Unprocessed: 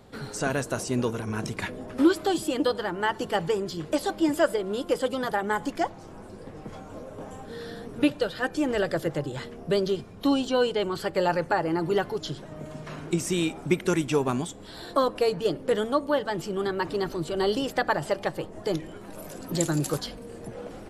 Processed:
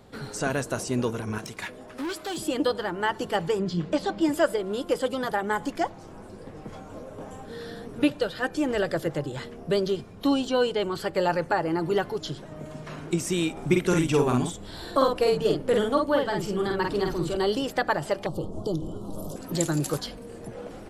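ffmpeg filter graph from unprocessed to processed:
ffmpeg -i in.wav -filter_complex "[0:a]asettb=1/sr,asplit=3[link_01][link_02][link_03];[link_01]atrim=end=1.384[link_04];[link_02]atrim=start=1.38:end=2.37,asetpts=PTS-STARTPTS,afade=type=in:duration=0.004:curve=qsin,afade=type=out:start_time=0.986:duration=0.004:curve=qsin,lowshelf=frequency=480:gain=-10,asoftclip=type=hard:threshold=-28.5dB[link_05];[link_03]atrim=start=2.366[link_06];[link_04][link_05]acrossfade=duration=0.004:curve1=hsin:curve2=qsin[link_07];[link_07][link_06]acrossfade=duration=0.004:curve1=qsin:curve2=hsin,asettb=1/sr,asplit=3[link_08][link_09][link_10];[link_08]atrim=end=3.594[link_11];[link_09]atrim=start=3.59:end=4.21,asetpts=PTS-STARTPTS,afade=type=in:duration=0.004:curve=qsin,afade=type=out:start_time=0.616:duration=0.004:curve=qsin,lowpass=5400,equalizer=frequency=180:width_type=o:width=0.33:gain=13[link_12];[link_10]atrim=start=4.206[link_13];[link_11][link_12]acrossfade=duration=0.004:curve1=hsin:curve2=qsin[link_14];[link_14][link_13]acrossfade=duration=0.004:curve1=qsin:curve2=hsin,asettb=1/sr,asplit=3[link_15][link_16][link_17];[link_15]atrim=end=13.524[link_18];[link_16]atrim=start=13.52:end=17.37,asetpts=PTS-STARTPTS,afade=type=in:duration=0.004:curve=qsin,afade=type=out:start_time=3.846:duration=0.004:curve=qsin,lowshelf=frequency=130:gain=5.5,asplit=2[link_19][link_20];[link_20]adelay=49,volume=-3dB[link_21];[link_19][link_21]amix=inputs=2:normalize=0,atrim=end_sample=169785[link_22];[link_17]atrim=start=17.366[link_23];[link_18][link_22]acrossfade=duration=0.004:curve1=hsin:curve2=qsin[link_24];[link_24][link_23]acrossfade=duration=0.004:curve1=qsin:curve2=hsin,asettb=1/sr,asplit=3[link_25][link_26][link_27];[link_25]atrim=end=18.264[link_28];[link_26]atrim=start=18.26:end=19.36,asetpts=PTS-STARTPTS,afade=type=in:duration=0.004:curve=qsin,afade=type=out:start_time=1.096:duration=0.004:curve=qsin,lowshelf=frequency=320:gain=11,acompressor=threshold=-25dB:ratio=3:attack=3.2:release=140:knee=1:detection=peak,asuperstop=centerf=2000:order=8:qfactor=1.1[link_29];[link_27]atrim=start=19.356[link_30];[link_28][link_29]acrossfade=duration=0.004:curve1=hsin:curve2=qsin[link_31];[link_31][link_30]acrossfade=duration=0.004:curve1=qsin:curve2=hsin" out.wav

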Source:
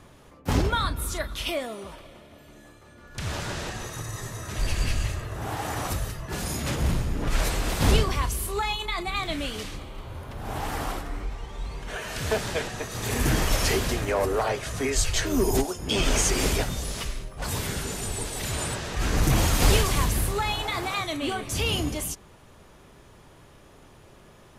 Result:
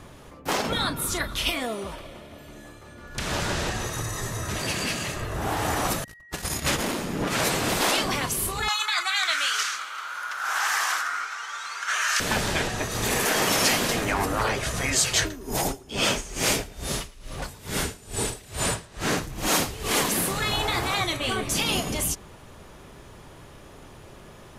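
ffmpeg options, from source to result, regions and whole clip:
ffmpeg -i in.wav -filter_complex "[0:a]asettb=1/sr,asplit=3[link_01][link_02][link_03];[link_01]atrim=end=6.044[link_04];[link_02]atrim=start=6.04:end=6.85,asetpts=PTS-STARTPTS,afade=type=in:duration=0.004:curve=qsin,afade=type=out:start_time=0.806:duration=0.004:curve=qsin,agate=range=-40dB:threshold=-30dB:ratio=16:release=100:detection=peak,tiltshelf=frequency=670:gain=-3.5,aeval=exprs='val(0)+0.00224*sin(2*PI*1900*n/s)':channel_layout=same[link_05];[link_03]atrim=start=6.846[link_06];[link_04][link_05]acrossfade=duration=0.004:curve1=hsin:curve2=qsin[link_07];[link_07][link_06]acrossfade=duration=0.004:curve1=qsin:curve2=hsin,asettb=1/sr,asplit=3[link_08][link_09][link_10];[link_08]atrim=end=8.684[link_11];[link_09]atrim=start=8.68:end=12.2,asetpts=PTS-STARTPTS,afade=type=in:duration=0.004:curve=qsin,afade=type=out:start_time=3.516:duration=0.004:curve=qsin,highpass=frequency=1400:width_type=q:width=7.9,equalizer=frequency=6200:width_type=o:width=0.85:gain=10[link_12];[link_10]atrim=start=12.196[link_13];[link_11][link_12]acrossfade=duration=0.004:curve1=hsin:curve2=qsin[link_14];[link_14][link_13]acrossfade=duration=0.004:curve1=qsin:curve2=hsin,asettb=1/sr,asplit=3[link_15][link_16][link_17];[link_15]atrim=end=15.194[link_18];[link_16]atrim=start=15.19:end=20.05,asetpts=PTS-STARTPTS,afade=type=in:duration=0.004:curve=qsin,afade=type=out:start_time=4.856:duration=0.004:curve=qsin,asplit=2[link_19][link_20];[link_20]adelay=29,volume=-13dB[link_21];[link_19][link_21]amix=inputs=2:normalize=0,atrim=end_sample=214326,aecho=1:1:111|222|333|444|555:0.631|0.24|0.0911|0.0346|0.0132,atrim=end_sample=214326,aeval=exprs='val(0)*pow(10,-25*(0.5-0.5*cos(2*PI*2.3*n/s))/20)':channel_layout=same[link_22];[link_17]atrim=start=20.046[link_23];[link_18][link_22]acrossfade=duration=0.004:curve1=hsin:curve2=qsin[link_24];[link_24][link_23]acrossfade=duration=0.004:curve1=qsin:curve2=hsin,afftfilt=real='re*lt(hypot(re,im),0.224)':imag='im*lt(hypot(re,im),0.224)':win_size=1024:overlap=0.75,acontrast=37" out.wav

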